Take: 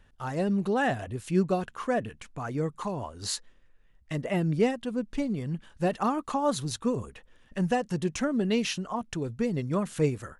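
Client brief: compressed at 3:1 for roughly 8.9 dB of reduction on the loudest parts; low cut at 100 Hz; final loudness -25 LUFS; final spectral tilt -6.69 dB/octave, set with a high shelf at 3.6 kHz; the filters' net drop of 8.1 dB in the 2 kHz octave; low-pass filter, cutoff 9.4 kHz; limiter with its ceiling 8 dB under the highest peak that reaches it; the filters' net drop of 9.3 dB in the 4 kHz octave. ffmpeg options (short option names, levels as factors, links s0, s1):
-af "highpass=100,lowpass=9400,equalizer=f=2000:t=o:g=-7.5,highshelf=f=3600:g=-6.5,equalizer=f=4000:t=o:g=-5,acompressor=threshold=0.0251:ratio=3,volume=5.01,alimiter=limit=0.158:level=0:latency=1"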